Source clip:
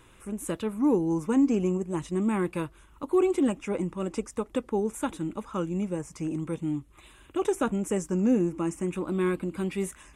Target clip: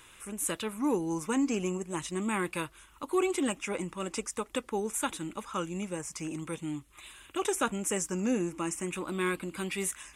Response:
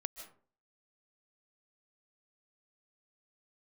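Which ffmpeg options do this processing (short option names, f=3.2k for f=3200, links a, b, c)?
-af "tiltshelf=f=970:g=-7.5"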